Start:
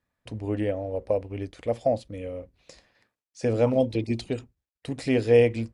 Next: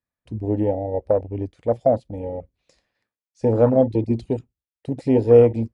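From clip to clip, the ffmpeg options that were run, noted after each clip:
ffmpeg -i in.wav -af "afwtdn=0.0355,volume=6dB" out.wav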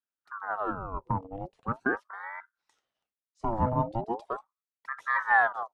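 ffmpeg -i in.wav -af "aeval=exprs='val(0)*sin(2*PI*930*n/s+930*0.6/0.4*sin(2*PI*0.4*n/s))':channel_layout=same,volume=-8dB" out.wav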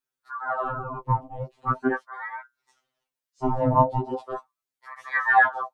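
ffmpeg -i in.wav -af "afftfilt=real='re*2.45*eq(mod(b,6),0)':imag='im*2.45*eq(mod(b,6),0)':win_size=2048:overlap=0.75,volume=7dB" out.wav

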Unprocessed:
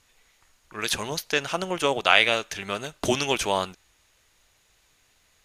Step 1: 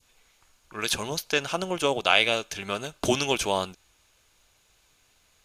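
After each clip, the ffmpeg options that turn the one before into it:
ffmpeg -i in.wav -af "bandreject=frequency=1900:width=7.9,adynamicequalizer=threshold=0.0158:dfrequency=1400:dqfactor=0.85:tfrequency=1400:tqfactor=0.85:attack=5:release=100:ratio=0.375:range=2.5:mode=cutabove:tftype=bell" out.wav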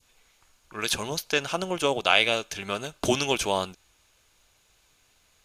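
ffmpeg -i in.wav -af anull out.wav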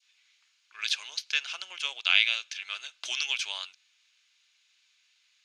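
ffmpeg -i in.wav -af "asuperpass=centerf=3300:order=4:qfactor=0.9" out.wav

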